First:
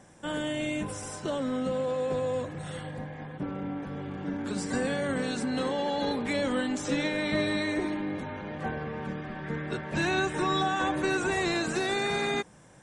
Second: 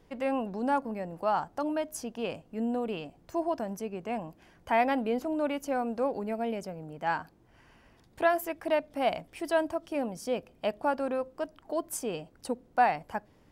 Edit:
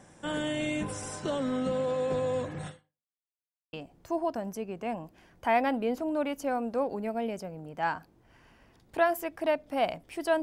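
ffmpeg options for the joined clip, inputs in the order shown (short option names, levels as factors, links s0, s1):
-filter_complex "[0:a]apad=whole_dur=10.42,atrim=end=10.42,asplit=2[s0][s1];[s0]atrim=end=3.16,asetpts=PTS-STARTPTS,afade=t=out:st=2.67:d=0.49:c=exp[s2];[s1]atrim=start=3.16:end=3.73,asetpts=PTS-STARTPTS,volume=0[s3];[1:a]atrim=start=2.97:end=9.66,asetpts=PTS-STARTPTS,afade=t=in:d=0.004:c=hsin[s4];[s2][s3][s4]concat=n=3:v=0:a=1"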